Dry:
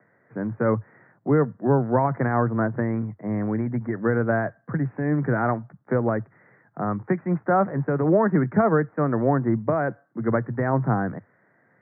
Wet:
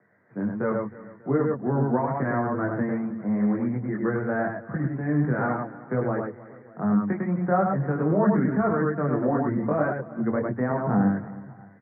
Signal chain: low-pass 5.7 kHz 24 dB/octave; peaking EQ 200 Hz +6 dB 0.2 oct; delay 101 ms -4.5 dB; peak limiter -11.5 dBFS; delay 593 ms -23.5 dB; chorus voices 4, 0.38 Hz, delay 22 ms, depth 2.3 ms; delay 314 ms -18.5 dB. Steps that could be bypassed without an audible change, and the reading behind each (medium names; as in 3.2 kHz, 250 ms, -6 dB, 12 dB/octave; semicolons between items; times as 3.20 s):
low-pass 5.7 kHz: input has nothing above 1.9 kHz